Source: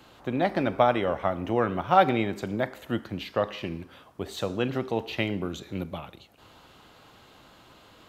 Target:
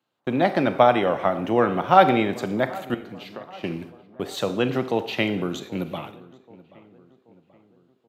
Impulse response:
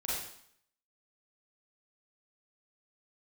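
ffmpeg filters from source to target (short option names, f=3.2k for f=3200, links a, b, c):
-filter_complex "[0:a]highpass=f=120:w=0.5412,highpass=f=120:w=1.3066,agate=range=-30dB:threshold=-44dB:ratio=16:detection=peak,asettb=1/sr,asplit=3[a][b][c];[a]atrim=end=2.944[d];[b]atrim=start=2.94:end=3.64,asetpts=PTS-STARTPTS,afade=t=in:d=0.004:c=qsin,afade=t=out:st=0.696:d=0.004:c=qsin,acompressor=threshold=-42dB:ratio=5[e];[c]atrim=start=3.636[f];[d][e]acrossfade=d=0.004:c1=hsin:c2=qsin[g];[g][f]acrossfade=d=0.004:c1=qsin:c2=hsin,asplit=2[h][i];[i]adelay=781,lowpass=f=1.9k:p=1,volume=-20.5dB,asplit=2[j][k];[k]adelay=781,lowpass=f=1.9k:p=1,volume=0.49,asplit=2[l][m];[m]adelay=781,lowpass=f=1.9k:p=1,volume=0.49,asplit=2[n][o];[o]adelay=781,lowpass=f=1.9k:p=1,volume=0.49[p];[h][j][l][n][p]amix=inputs=5:normalize=0,asplit=2[q][r];[1:a]atrim=start_sample=2205[s];[r][s]afir=irnorm=-1:irlink=0,volume=-15.5dB[t];[q][t]amix=inputs=2:normalize=0,volume=4dB"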